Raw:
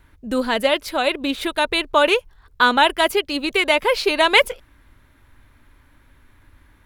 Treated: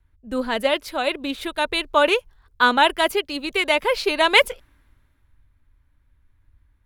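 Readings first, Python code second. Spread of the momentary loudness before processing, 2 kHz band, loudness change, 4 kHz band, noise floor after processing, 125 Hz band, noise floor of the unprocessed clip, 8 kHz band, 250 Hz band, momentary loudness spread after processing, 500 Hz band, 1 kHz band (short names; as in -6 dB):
9 LU, -1.5 dB, -2.0 dB, -2.0 dB, -63 dBFS, n/a, -56 dBFS, -2.5 dB, -3.0 dB, 11 LU, -2.0 dB, -1.5 dB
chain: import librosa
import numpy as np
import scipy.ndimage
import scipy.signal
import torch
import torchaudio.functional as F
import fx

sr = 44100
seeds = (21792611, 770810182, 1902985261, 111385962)

y = fx.band_widen(x, sr, depth_pct=40)
y = F.gain(torch.from_numpy(y), -2.5).numpy()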